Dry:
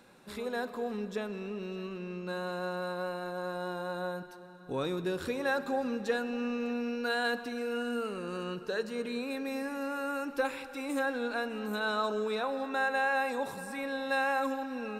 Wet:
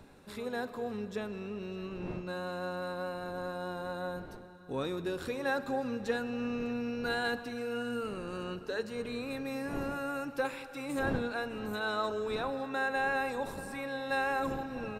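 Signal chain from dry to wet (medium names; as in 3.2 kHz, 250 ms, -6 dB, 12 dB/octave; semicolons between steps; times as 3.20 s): wind noise 410 Hz -47 dBFS; harmony voices -12 st -15 dB; trim -2 dB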